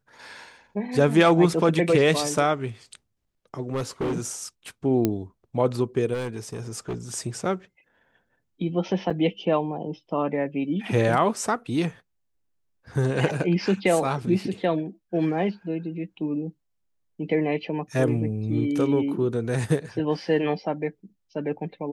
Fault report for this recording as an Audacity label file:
3.620000	4.180000	clipped -23 dBFS
5.050000	5.050000	pop -9 dBFS
6.130000	6.960000	clipped -26 dBFS
9.100000	9.100000	gap 4.8 ms

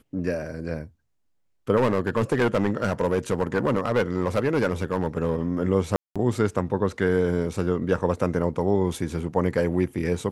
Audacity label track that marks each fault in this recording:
1.760000	5.400000	clipped -16.5 dBFS
5.960000	6.160000	gap 0.196 s

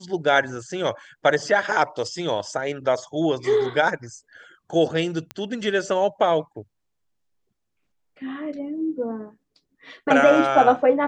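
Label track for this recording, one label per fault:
5.310000	5.310000	pop -16 dBFS

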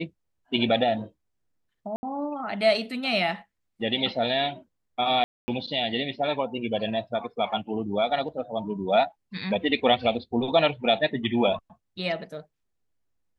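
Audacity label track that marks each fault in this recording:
1.960000	2.030000	gap 70 ms
5.240000	5.480000	gap 0.24 s

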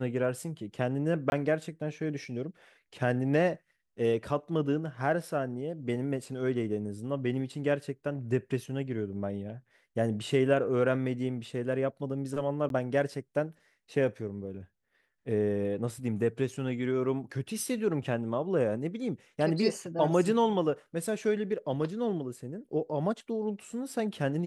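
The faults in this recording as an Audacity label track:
1.300000	1.320000	gap 21 ms
12.690000	12.700000	gap 12 ms

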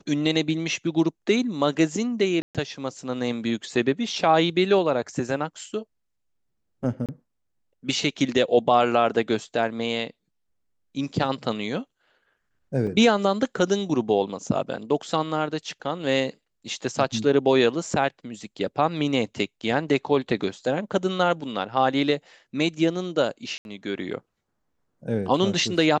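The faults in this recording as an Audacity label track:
2.420000	2.550000	gap 0.127 s
7.060000	7.090000	gap 27 ms
12.870000	12.870000	gap 4.3 ms
23.580000	23.650000	gap 71 ms

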